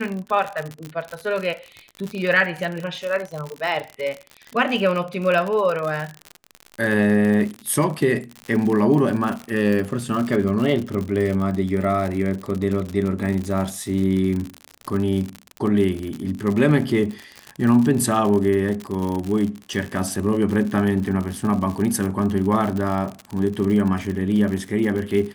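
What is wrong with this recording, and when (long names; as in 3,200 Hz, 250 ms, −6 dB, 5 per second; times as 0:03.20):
surface crackle 68 per second −25 dBFS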